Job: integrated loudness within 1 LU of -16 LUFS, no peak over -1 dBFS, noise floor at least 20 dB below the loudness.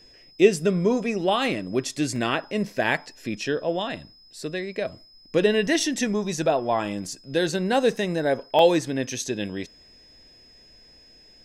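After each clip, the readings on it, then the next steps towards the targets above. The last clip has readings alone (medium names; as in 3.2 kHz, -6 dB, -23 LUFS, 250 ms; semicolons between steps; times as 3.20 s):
dropouts 3; longest dropout 2.5 ms; steady tone 5.1 kHz; tone level -51 dBFS; loudness -24.5 LUFS; peak level -4.5 dBFS; loudness target -16.0 LUFS
-> interpolate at 2.16/5.67/8.59 s, 2.5 ms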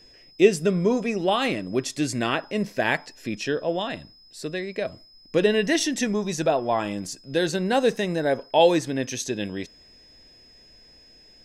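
dropouts 0; steady tone 5.1 kHz; tone level -51 dBFS
-> band-stop 5.1 kHz, Q 30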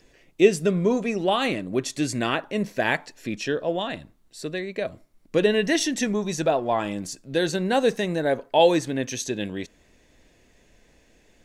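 steady tone not found; loudness -24.5 LUFS; peak level -4.5 dBFS; loudness target -16.0 LUFS
-> trim +8.5 dB; peak limiter -1 dBFS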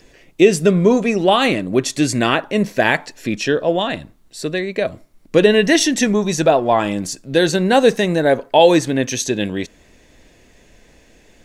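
loudness -16.5 LUFS; peak level -1.0 dBFS; noise floor -51 dBFS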